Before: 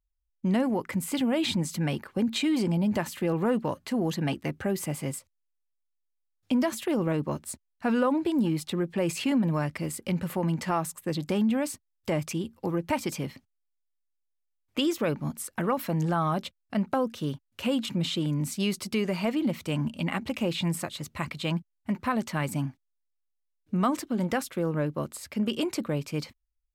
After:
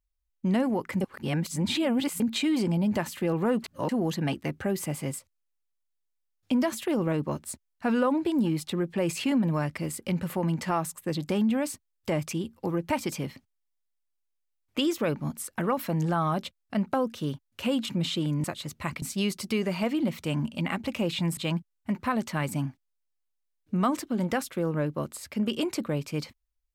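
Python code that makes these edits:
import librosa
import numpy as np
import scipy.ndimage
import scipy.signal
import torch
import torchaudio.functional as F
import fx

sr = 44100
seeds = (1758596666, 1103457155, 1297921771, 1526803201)

y = fx.edit(x, sr, fx.reverse_span(start_s=1.01, length_s=1.19),
    fx.reverse_span(start_s=3.64, length_s=0.25),
    fx.move(start_s=20.79, length_s=0.58, to_s=18.44), tone=tone)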